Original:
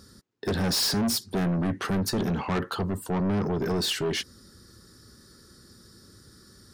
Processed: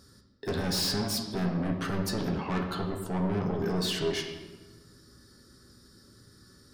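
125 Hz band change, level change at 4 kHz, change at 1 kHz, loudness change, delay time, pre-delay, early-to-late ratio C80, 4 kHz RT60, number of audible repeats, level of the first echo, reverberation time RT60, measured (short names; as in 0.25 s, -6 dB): -3.0 dB, -3.5 dB, -3.0 dB, -3.5 dB, none, 7 ms, 7.5 dB, 0.90 s, none, none, 1.3 s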